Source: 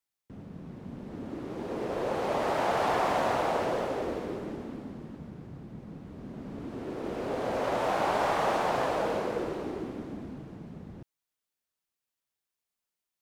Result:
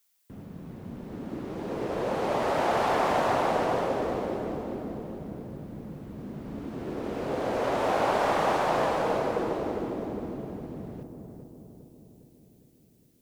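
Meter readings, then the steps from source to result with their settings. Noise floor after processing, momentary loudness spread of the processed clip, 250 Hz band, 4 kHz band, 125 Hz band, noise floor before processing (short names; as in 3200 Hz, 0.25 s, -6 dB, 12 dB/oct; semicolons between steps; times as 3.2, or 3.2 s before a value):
-61 dBFS, 16 LU, +3.0 dB, +1.5 dB, +3.0 dB, under -85 dBFS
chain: added noise blue -72 dBFS; on a send: darkening echo 0.407 s, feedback 62%, low-pass 980 Hz, level -5 dB; on the sum: gain +1.5 dB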